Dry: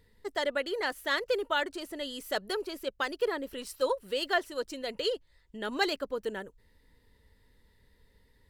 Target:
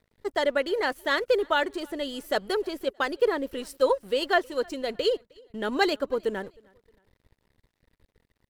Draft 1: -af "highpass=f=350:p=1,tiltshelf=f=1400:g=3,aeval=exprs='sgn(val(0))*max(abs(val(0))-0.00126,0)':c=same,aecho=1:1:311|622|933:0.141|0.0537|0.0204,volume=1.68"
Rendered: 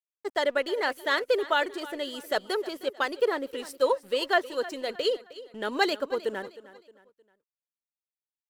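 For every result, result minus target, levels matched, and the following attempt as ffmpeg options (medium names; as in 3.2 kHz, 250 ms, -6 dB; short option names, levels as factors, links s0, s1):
echo-to-direct +10.5 dB; 250 Hz band -2.5 dB
-af "highpass=f=350:p=1,tiltshelf=f=1400:g=3,aeval=exprs='sgn(val(0))*max(abs(val(0))-0.00126,0)':c=same,aecho=1:1:311|622:0.0422|0.016,volume=1.68"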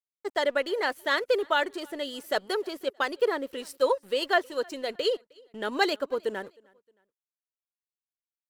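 250 Hz band -2.5 dB
-af "tiltshelf=f=1400:g=3,aeval=exprs='sgn(val(0))*max(abs(val(0))-0.00126,0)':c=same,aecho=1:1:311|622:0.0422|0.016,volume=1.68"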